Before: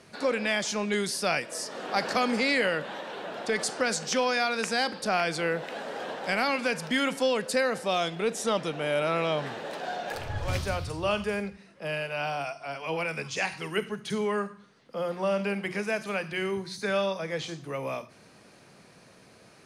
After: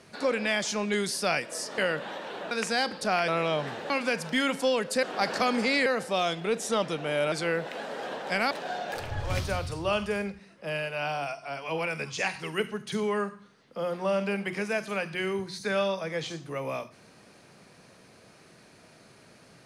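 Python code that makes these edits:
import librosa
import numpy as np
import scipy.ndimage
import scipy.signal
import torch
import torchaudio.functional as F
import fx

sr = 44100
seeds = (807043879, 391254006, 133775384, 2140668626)

y = fx.edit(x, sr, fx.move(start_s=1.78, length_s=0.83, to_s=7.61),
    fx.cut(start_s=3.34, length_s=1.18),
    fx.swap(start_s=5.29, length_s=1.19, other_s=9.07, other_length_s=0.62), tone=tone)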